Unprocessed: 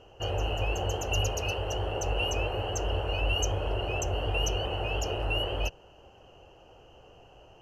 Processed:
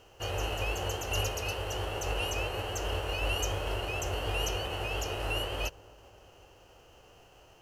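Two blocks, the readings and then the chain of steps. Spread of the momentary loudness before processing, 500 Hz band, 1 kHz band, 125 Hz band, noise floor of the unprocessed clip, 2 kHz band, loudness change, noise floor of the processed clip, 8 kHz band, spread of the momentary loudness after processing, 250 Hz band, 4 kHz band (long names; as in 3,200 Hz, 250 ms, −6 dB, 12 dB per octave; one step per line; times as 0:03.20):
3 LU, −3.0 dB, −2.0 dB, −4.5 dB, −55 dBFS, −0.5 dB, −2.5 dB, −58 dBFS, −2.0 dB, 3 LU, −3.0 dB, −2.0 dB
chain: spectral envelope flattened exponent 0.6
delay with a low-pass on its return 253 ms, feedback 69%, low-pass 990 Hz, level −22 dB
level −3.5 dB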